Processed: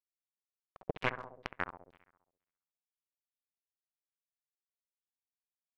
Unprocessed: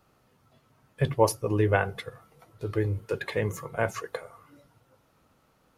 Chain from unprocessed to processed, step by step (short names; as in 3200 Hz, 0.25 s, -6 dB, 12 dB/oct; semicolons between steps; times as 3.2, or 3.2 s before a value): switching spikes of -17 dBFS; Doppler pass-by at 1.23, 42 m/s, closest 3 m; low shelf 130 Hz +6.5 dB; compressor 8:1, threshold -46 dBFS, peak gain reduction 23 dB; companded quantiser 2-bit; dark delay 67 ms, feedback 62%, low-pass 2100 Hz, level -11.5 dB; LFO low-pass saw down 2.1 Hz 440–4000 Hz; gain +5.5 dB